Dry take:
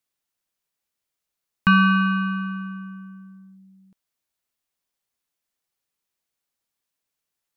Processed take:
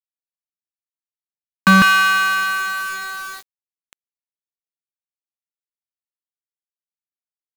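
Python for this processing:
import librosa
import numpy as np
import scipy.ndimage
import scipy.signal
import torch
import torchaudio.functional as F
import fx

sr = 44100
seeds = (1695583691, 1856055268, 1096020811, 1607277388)

y = fx.highpass(x, sr, hz=fx.steps((0.0, 180.0), (1.82, 1100.0)), slope=24)
y = fx.power_curve(y, sr, exponent=0.5)
y = fx.quant_dither(y, sr, seeds[0], bits=6, dither='none')
y = F.gain(torch.from_numpy(y), 3.0).numpy()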